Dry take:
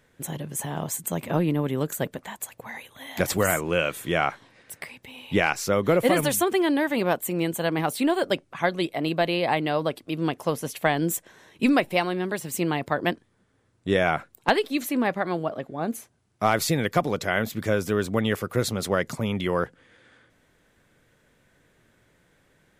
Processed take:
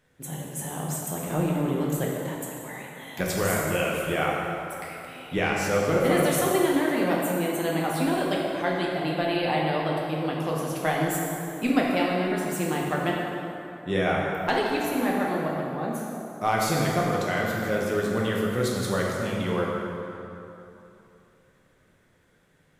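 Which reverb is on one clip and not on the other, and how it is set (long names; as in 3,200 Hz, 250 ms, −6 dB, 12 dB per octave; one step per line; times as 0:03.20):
dense smooth reverb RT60 3 s, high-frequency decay 0.6×, DRR −3.5 dB
level −6 dB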